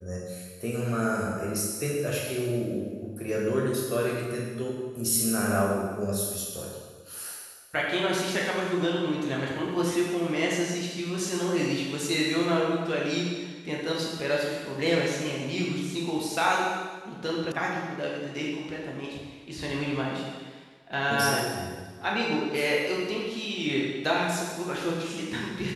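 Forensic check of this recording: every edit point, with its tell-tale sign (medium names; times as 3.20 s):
17.52 s: sound stops dead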